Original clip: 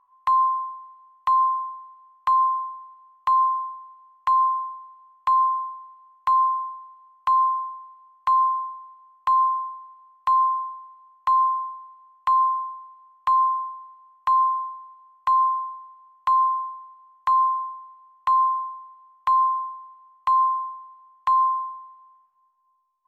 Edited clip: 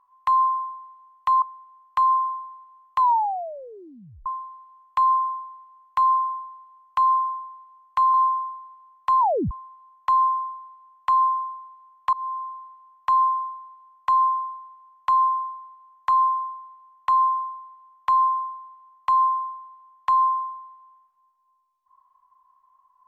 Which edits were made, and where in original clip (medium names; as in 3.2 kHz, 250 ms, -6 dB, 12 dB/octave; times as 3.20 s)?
1.42–1.72 s: delete
3.29 s: tape stop 1.27 s
8.44–9.33 s: delete
10.39 s: tape stop 0.31 s
13.32–13.76 s: fade in linear, from -23.5 dB